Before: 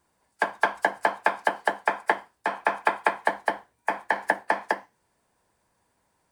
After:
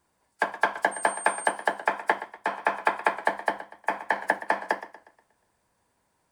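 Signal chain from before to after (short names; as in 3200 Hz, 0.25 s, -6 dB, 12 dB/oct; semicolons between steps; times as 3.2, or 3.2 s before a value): 0.91–1.5 whine 8700 Hz -35 dBFS; warbling echo 0.12 s, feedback 43%, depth 68 cents, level -15 dB; gain -1 dB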